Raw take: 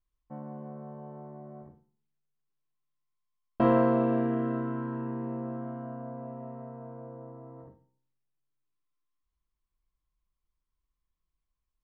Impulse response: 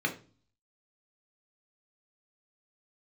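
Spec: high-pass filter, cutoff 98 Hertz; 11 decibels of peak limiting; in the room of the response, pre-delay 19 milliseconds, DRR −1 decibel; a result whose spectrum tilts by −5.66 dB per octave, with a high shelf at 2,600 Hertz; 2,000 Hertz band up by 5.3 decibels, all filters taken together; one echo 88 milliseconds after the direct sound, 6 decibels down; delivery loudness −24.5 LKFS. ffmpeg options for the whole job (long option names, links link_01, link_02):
-filter_complex "[0:a]highpass=98,equalizer=frequency=2000:width_type=o:gain=5.5,highshelf=frequency=2600:gain=4,alimiter=limit=-20.5dB:level=0:latency=1,aecho=1:1:88:0.501,asplit=2[link_01][link_02];[1:a]atrim=start_sample=2205,adelay=19[link_03];[link_02][link_03]afir=irnorm=-1:irlink=0,volume=-7dB[link_04];[link_01][link_04]amix=inputs=2:normalize=0,volume=3dB"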